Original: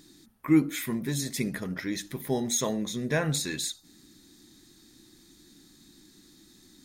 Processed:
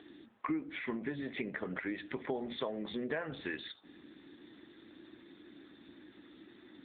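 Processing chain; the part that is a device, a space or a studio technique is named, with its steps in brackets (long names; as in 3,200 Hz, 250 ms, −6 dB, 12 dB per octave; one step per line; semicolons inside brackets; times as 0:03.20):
voicemail (band-pass filter 370–2,800 Hz; downward compressor 8 to 1, threshold −42 dBFS, peak gain reduction 20 dB; level +8.5 dB; AMR narrowband 7.95 kbit/s 8,000 Hz)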